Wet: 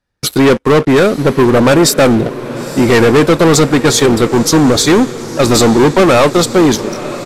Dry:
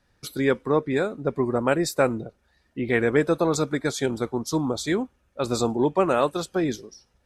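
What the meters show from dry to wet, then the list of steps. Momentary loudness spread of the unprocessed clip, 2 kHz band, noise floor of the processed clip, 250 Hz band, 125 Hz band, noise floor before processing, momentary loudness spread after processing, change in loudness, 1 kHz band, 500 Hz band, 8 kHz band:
11 LU, +14.0 dB, −32 dBFS, +16.0 dB, +16.5 dB, −68 dBFS, 7 LU, +14.5 dB, +14.0 dB, +14.0 dB, +19.5 dB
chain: leveller curve on the samples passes 5
downsampling to 32,000 Hz
feedback delay with all-pass diffusion 950 ms, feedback 53%, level −14 dB
level +3 dB

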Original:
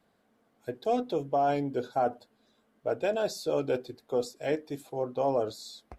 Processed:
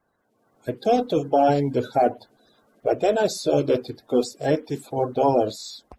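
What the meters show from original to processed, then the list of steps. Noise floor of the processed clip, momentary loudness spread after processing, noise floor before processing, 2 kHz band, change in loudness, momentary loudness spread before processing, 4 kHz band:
−70 dBFS, 9 LU, −71 dBFS, +6.0 dB, +8.0 dB, 9 LU, +8.0 dB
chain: spectral magnitudes quantised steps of 30 dB
automatic gain control gain up to 10.5 dB
level −1.5 dB

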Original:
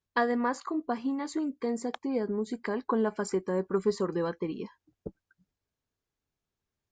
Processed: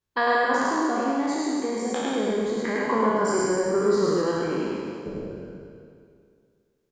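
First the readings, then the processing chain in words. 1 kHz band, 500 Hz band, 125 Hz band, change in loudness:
+9.0 dB, +7.0 dB, +5.0 dB, +6.5 dB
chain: peak hold with a decay on every bin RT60 2.25 s
mains-hum notches 60/120/180/240 Hz
loudspeakers that aren't time-aligned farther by 36 metres −1 dB, 81 metres −12 dB

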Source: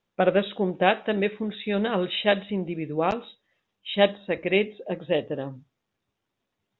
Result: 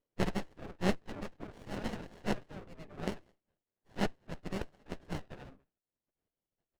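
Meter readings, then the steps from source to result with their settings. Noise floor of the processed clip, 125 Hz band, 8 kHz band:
below −85 dBFS, −7.5 dB, can't be measured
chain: far-end echo of a speakerphone 210 ms, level −27 dB
auto-filter low-pass saw down 0.65 Hz 690–1,700 Hz
graphic EQ with 10 bands 125 Hz +5 dB, 250 Hz −7 dB, 500 Hz −10 dB, 2,000 Hz +9 dB
reverb reduction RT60 0.69 s
gate on every frequency bin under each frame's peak −20 dB weak
windowed peak hold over 33 samples
level +8 dB

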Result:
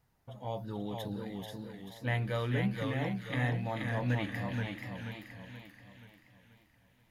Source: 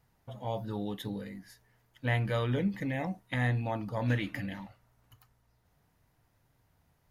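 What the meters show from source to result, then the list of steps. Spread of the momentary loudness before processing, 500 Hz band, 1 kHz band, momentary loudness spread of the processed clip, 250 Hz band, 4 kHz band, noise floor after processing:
14 LU, −1.5 dB, −1.5 dB, 16 LU, −1.5 dB, 0.0 dB, −69 dBFS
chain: delay with a high-pass on its return 437 ms, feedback 42%, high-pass 2,100 Hz, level −4 dB
feedback echo with a swinging delay time 480 ms, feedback 45%, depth 116 cents, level −4.5 dB
level −3 dB

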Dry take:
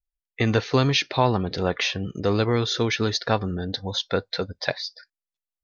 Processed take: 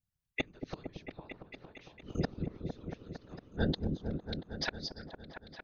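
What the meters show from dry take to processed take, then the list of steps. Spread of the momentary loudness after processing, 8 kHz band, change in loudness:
15 LU, can't be measured, −15.5 dB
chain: fade-out on the ending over 1.74 s
gate with flip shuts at −19 dBFS, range −37 dB
random phases in short frames
echo whose low-pass opens from repeat to repeat 228 ms, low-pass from 400 Hz, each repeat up 1 octave, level −3 dB
level +1 dB

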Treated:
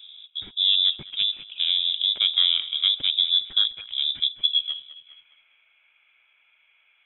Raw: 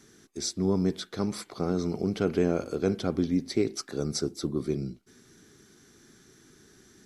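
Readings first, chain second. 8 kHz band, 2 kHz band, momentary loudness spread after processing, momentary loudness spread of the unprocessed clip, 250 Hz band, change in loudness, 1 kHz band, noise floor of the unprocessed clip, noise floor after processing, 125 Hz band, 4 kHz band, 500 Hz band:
below −40 dB, +4.0 dB, 9 LU, 7 LU, below −25 dB, +8.5 dB, below −10 dB, −59 dBFS, −64 dBFS, below −20 dB, +23.0 dB, below −25 dB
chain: adaptive Wiener filter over 25 samples
high-pass filter sweep 75 Hz → 1,400 Hz, 0:04.02–0:05.01
on a send: feedback echo with a high-pass in the loop 205 ms, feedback 48%, high-pass 540 Hz, level −14 dB
on the sum: voice inversion scrambler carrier 3,700 Hz
one half of a high-frequency compander encoder only
level +3.5 dB

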